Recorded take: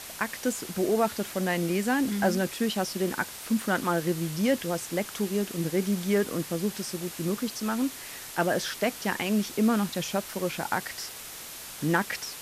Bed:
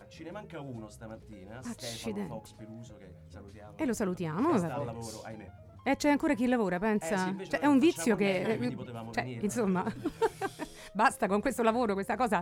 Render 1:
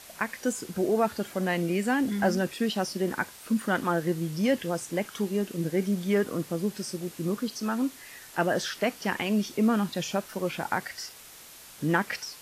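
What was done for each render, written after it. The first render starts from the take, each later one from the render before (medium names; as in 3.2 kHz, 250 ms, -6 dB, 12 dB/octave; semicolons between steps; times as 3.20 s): noise print and reduce 7 dB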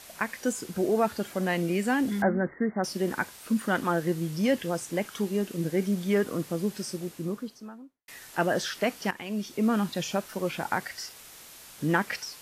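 2.22–2.84 s: brick-wall FIR low-pass 2.2 kHz; 6.85–8.08 s: studio fade out; 9.11–9.80 s: fade in, from -12.5 dB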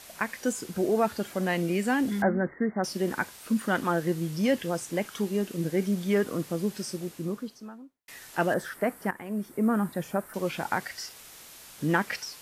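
8.54–10.34 s: high-order bell 4.1 kHz -15 dB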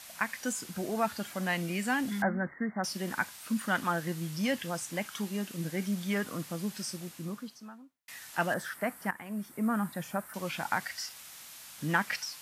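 high-pass 150 Hz 6 dB/octave; peaking EQ 410 Hz -11.5 dB 1.1 oct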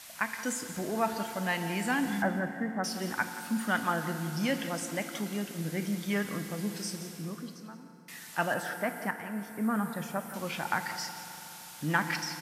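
delay 175 ms -13.5 dB; FDN reverb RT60 3.7 s, high-frequency decay 0.6×, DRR 8 dB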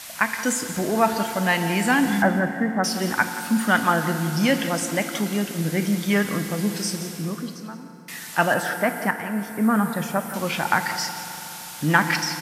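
trim +10 dB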